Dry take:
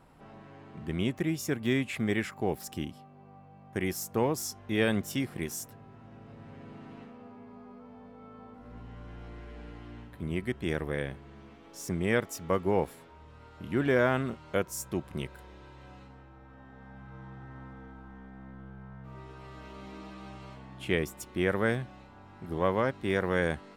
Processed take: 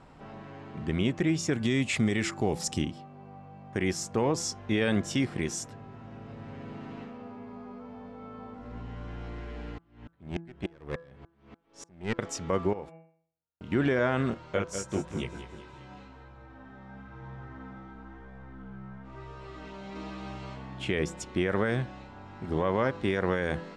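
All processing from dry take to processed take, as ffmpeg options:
-filter_complex "[0:a]asettb=1/sr,asplit=3[a][b][c];[a]atrim=end=1.534[d];[b]atrim=start=1.53:end=2.82,asetpts=PTS-STARTPTS,afade=t=in:d=0.004:c=qsin,afade=t=out:st=1.286:d=0.004:c=qsin,bass=f=250:g=3,treble=f=4k:g=9,bandreject=f=1.6k:w=15[e];[c]atrim=start=2.816[f];[d][e]acrossfade=d=0.004:c1=hsin:c2=qsin[g];[g][f]acrossfade=d=0.004:c1=qsin:c2=hsin,asettb=1/sr,asplit=3[h][i][j];[h]atrim=end=9.784[k];[i]atrim=start=9.78:end=12.19,asetpts=PTS-STARTPTS,afade=t=in:d=0.004:c=qsin,afade=t=out:st=2.406:d=0.004:c=qsin,equalizer=f=6.9k:w=0.87:g=-5,aeval=exprs='clip(val(0),-1,0.0355)':c=same,aeval=exprs='val(0)*pow(10,-39*if(lt(mod(-3.4*n/s,1),2*abs(-3.4)/1000),1-mod(-3.4*n/s,1)/(2*abs(-3.4)/1000),(mod(-3.4*n/s,1)-2*abs(-3.4)/1000)/(1-2*abs(-3.4)/1000))/20)':c=same[l];[j]atrim=start=12.186[m];[k][l]acrossfade=d=0.004:c1=hsin:c2=qsin[n];[n][m]acrossfade=d=0.004:c1=qsin:c2=hsin,asettb=1/sr,asplit=3[o][p][q];[o]atrim=end=12.734[r];[p]atrim=start=12.73:end=13.72,asetpts=PTS-STARTPTS,afade=t=in:d=0.004:c=qsin,afade=t=out:st=0.986:d=0.004:c=qsin,agate=range=-55dB:threshold=-43dB:ratio=16:release=100:detection=peak,bandreject=f=162.7:t=h:w=4,bandreject=f=325.4:t=h:w=4,bandreject=f=488.1:t=h:w=4,bandreject=f=650.8:t=h:w=4,bandreject=f=813.5:t=h:w=4,bandreject=f=976.2:t=h:w=4,bandreject=f=1.1389k:t=h:w=4,bandreject=f=1.3016k:t=h:w=4,bandreject=f=1.4643k:t=h:w=4,bandreject=f=1.627k:t=h:w=4,bandreject=f=1.7897k:t=h:w=4,bandreject=f=1.9524k:t=h:w=4,bandreject=f=2.1151k:t=h:w=4,bandreject=f=2.2778k:t=h:w=4,bandreject=f=2.4405k:t=h:w=4,bandreject=f=2.6032k:t=h:w=4,bandreject=f=2.7659k:t=h:w=4,acompressor=threshold=-45dB:ratio=3:attack=3.2:release=140:knee=1:detection=peak[s];[q]atrim=start=13.716[t];[r][s]acrossfade=d=0.004:c1=hsin:c2=qsin[u];[u][t]acrossfade=d=0.004:c1=qsin:c2=hsin,asettb=1/sr,asplit=3[v][w][x];[v]atrim=end=14.344[y];[w]atrim=start=14.34:end=19.96,asetpts=PTS-STARTPTS,afade=t=in:d=0.004:c=qsin,afade=t=out:st=5.616:d=0.004:c=qsin,aecho=1:1:192|384|576|768|960:0.251|0.121|0.0579|0.0278|0.0133,atrim=end_sample=247842,flanger=delay=17:depth=3.7:speed=1[z];[x]atrim=start=19.956[aa];[y][z]acrossfade=d=0.004:c1=hsin:c2=qsin[ab];[ab][aa]acrossfade=d=0.004:c1=qsin:c2=hsin,lowpass=f=7.7k:w=0.5412,lowpass=f=7.7k:w=1.3066,bandreject=f=167.6:t=h:w=4,bandreject=f=335.2:t=h:w=4,bandreject=f=502.8:t=h:w=4,bandreject=f=670.4:t=h:w=4,bandreject=f=838:t=h:w=4,bandreject=f=1.0056k:t=h:w=4,bandreject=f=1.1732k:t=h:w=4,bandreject=f=1.3408k:t=h:w=4,bandreject=f=1.5084k:t=h:w=4,bandreject=f=1.676k:t=h:w=4,alimiter=limit=-22.5dB:level=0:latency=1:release=71,volume=5.5dB"

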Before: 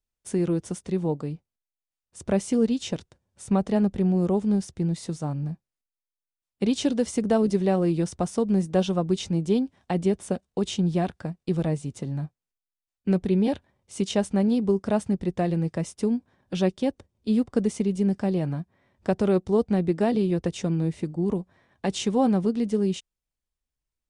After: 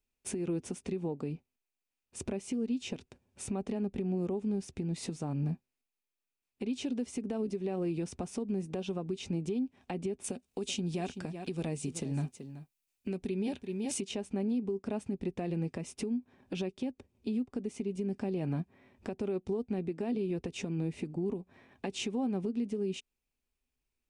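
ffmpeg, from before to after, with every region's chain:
-filter_complex "[0:a]asettb=1/sr,asplit=3[a][b][c];[a]atrim=end=10.244[d];[b]atrim=start=10.24:end=14.01,asetpts=PTS-STARTPTS,afade=t=in:d=0.004:c=qsin,afade=t=out:st=3.766:d=0.004:c=qsin,highshelf=f=3.5k:g=11.5,aecho=1:1:379:0.126,atrim=end_sample=166257[e];[c]atrim=start=14.006[f];[d][e]acrossfade=d=0.004:c1=hsin:c2=qsin[g];[g][f]acrossfade=d=0.004:c1=qsin:c2=hsin,equalizer=f=250:t=o:w=0.33:g=10,equalizer=f=400:t=o:w=0.33:g=8,equalizer=f=800:t=o:w=0.33:g=3,equalizer=f=2.5k:t=o:w=0.33:g=10,acompressor=threshold=-26dB:ratio=6,alimiter=level_in=1.5dB:limit=-24dB:level=0:latency=1:release=253,volume=-1.5dB"

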